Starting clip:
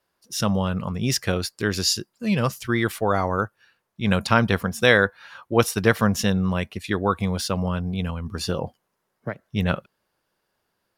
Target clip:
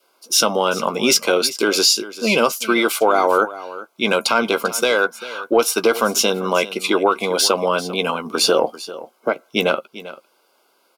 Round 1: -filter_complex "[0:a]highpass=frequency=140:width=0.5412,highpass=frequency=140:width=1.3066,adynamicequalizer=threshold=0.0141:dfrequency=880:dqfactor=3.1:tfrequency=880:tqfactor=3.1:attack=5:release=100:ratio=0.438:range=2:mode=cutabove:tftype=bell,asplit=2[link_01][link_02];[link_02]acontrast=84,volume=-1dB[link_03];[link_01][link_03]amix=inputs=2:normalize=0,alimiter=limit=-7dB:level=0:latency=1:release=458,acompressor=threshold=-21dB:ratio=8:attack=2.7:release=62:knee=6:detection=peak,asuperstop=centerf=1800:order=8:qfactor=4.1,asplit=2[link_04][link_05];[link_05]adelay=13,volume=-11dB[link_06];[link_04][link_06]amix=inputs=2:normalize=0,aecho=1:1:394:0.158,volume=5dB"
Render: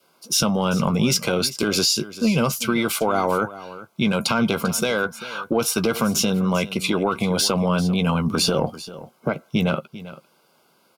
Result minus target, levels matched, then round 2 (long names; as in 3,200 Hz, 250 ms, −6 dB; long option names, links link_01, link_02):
125 Hz band +15.0 dB; downward compressor: peak gain reduction +6 dB
-filter_complex "[0:a]highpass=frequency=300:width=0.5412,highpass=frequency=300:width=1.3066,adynamicequalizer=threshold=0.0141:dfrequency=880:dqfactor=3.1:tfrequency=880:tqfactor=3.1:attack=5:release=100:ratio=0.438:range=2:mode=cutabove:tftype=bell,asplit=2[link_01][link_02];[link_02]acontrast=84,volume=-1dB[link_03];[link_01][link_03]amix=inputs=2:normalize=0,alimiter=limit=-7dB:level=0:latency=1:release=458,acompressor=threshold=-13.5dB:ratio=8:attack=2.7:release=62:knee=6:detection=peak,asuperstop=centerf=1800:order=8:qfactor=4.1,asplit=2[link_04][link_05];[link_05]adelay=13,volume=-11dB[link_06];[link_04][link_06]amix=inputs=2:normalize=0,aecho=1:1:394:0.158,volume=5dB"